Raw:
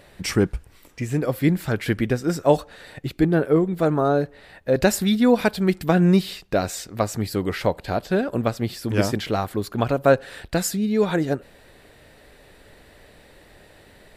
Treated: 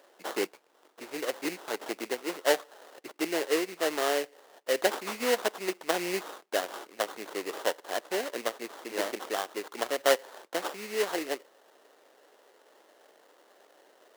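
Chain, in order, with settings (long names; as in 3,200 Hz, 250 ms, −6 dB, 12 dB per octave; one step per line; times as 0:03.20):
sample-rate reduction 2,400 Hz, jitter 20%
high-pass filter 360 Hz 24 dB per octave
level −7 dB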